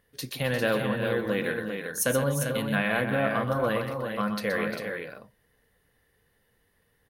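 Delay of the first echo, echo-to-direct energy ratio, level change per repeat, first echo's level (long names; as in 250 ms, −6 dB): 124 ms, −3.5 dB, repeats not evenly spaced, −8.5 dB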